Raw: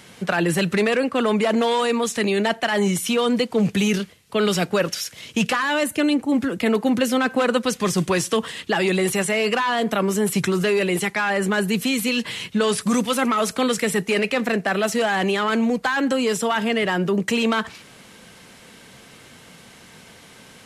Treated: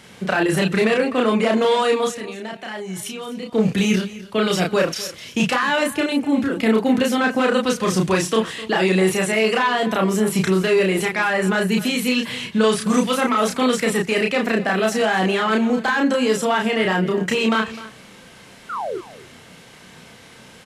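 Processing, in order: high shelf 7300 Hz -5.5 dB; 2.07–3.53 level quantiser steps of 16 dB; 18.69–18.98 painted sound fall 330–1500 Hz -28 dBFS; doubler 32 ms -2 dB; on a send: echo 0.255 s -17 dB

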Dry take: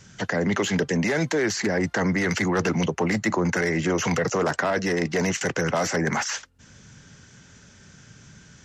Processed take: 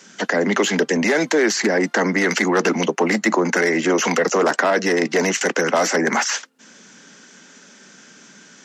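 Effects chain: steep high-pass 210 Hz 36 dB/oct; gain +6.5 dB

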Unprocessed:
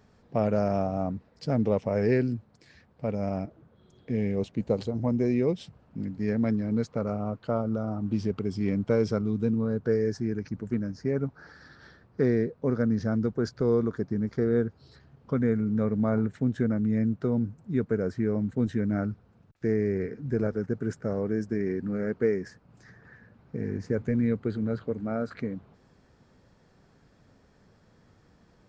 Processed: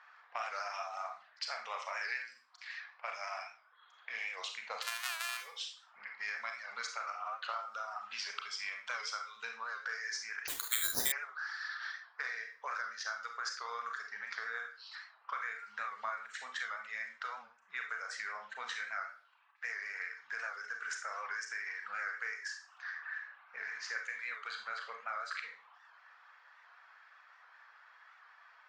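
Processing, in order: 4.82–5.37 sample sorter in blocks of 128 samples; inverse Chebyshev high-pass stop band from 340 Hz, stop band 60 dB; low-pass opened by the level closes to 1600 Hz, open at -44.5 dBFS; reverb removal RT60 0.69 s; compressor 4:1, threshold -54 dBFS, peak gain reduction 21 dB; reverb RT60 0.45 s, pre-delay 28 ms, DRR 2.5 dB; 10.48–11.12 careless resampling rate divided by 8×, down none, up zero stuff; record warp 78 rpm, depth 100 cents; gain +14.5 dB

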